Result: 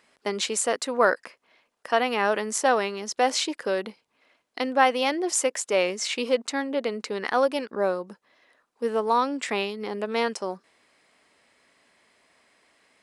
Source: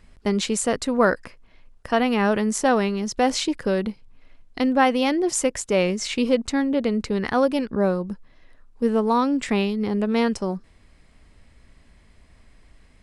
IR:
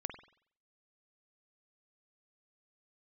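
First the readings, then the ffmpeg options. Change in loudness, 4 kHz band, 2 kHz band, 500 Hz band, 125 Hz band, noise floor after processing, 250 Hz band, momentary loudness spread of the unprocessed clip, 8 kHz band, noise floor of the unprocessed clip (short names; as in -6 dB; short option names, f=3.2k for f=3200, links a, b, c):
-3.0 dB, 0.0 dB, 0.0 dB, -2.5 dB, under -10 dB, -73 dBFS, -10.5 dB, 6 LU, 0.0 dB, -55 dBFS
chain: -af "highpass=450"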